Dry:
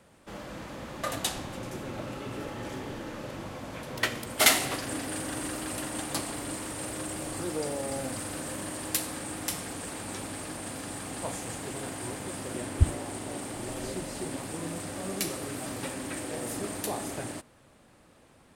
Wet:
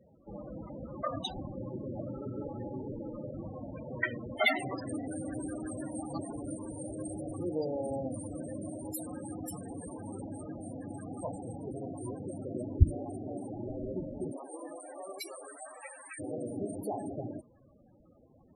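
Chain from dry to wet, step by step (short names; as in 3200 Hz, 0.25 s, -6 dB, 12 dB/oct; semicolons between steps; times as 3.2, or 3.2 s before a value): 14.32–16.18 HPF 390 Hz -> 940 Hz 12 dB/oct; loudest bins only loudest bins 16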